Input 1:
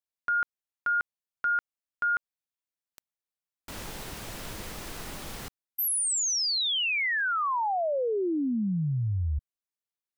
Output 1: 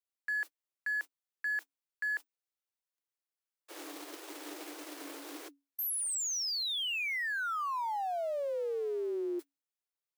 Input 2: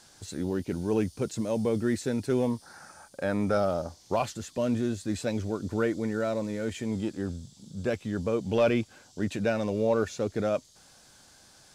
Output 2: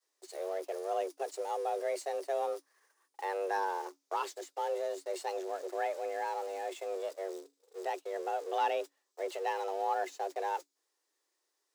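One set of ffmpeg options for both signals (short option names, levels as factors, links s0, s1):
-af "aeval=exprs='val(0)+0.5*0.0126*sgn(val(0))':c=same,agate=range=0.00891:threshold=0.02:ratio=3:release=60:detection=rms,afreqshift=280,volume=0.398"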